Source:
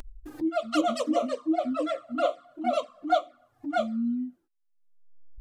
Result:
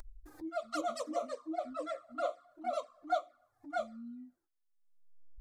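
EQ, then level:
parametric band 210 Hz −13 dB 1.8 octaves
parametric band 2,900 Hz −12.5 dB 0.52 octaves
−6.0 dB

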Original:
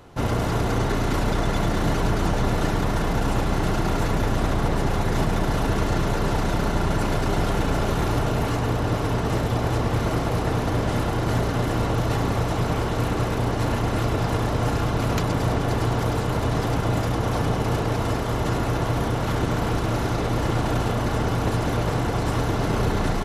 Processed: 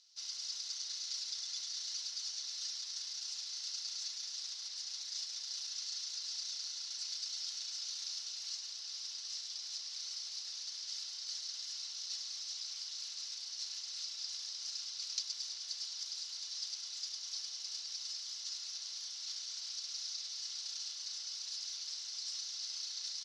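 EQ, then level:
flat-topped band-pass 5,100 Hz, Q 3
+4.5 dB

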